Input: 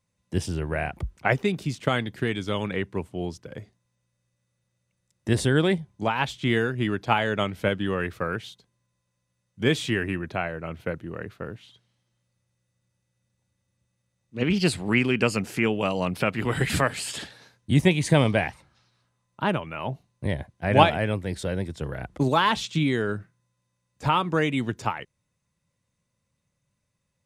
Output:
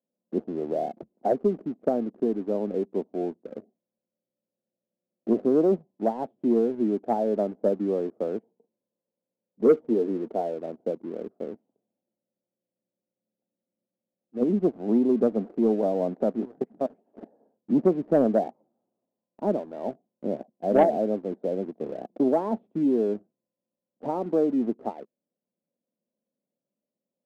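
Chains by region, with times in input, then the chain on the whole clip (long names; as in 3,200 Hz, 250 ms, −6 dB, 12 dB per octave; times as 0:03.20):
0:08.43–0:10.54: Savitzky-Golay smoothing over 41 samples + hollow resonant body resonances 460/900 Hz, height 11 dB, ringing for 90 ms
0:16.45–0:17.17: notch filter 500 Hz, Q 14 + output level in coarse steps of 22 dB
whole clip: Chebyshev band-pass filter 220–710 Hz, order 3; leveller curve on the samples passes 1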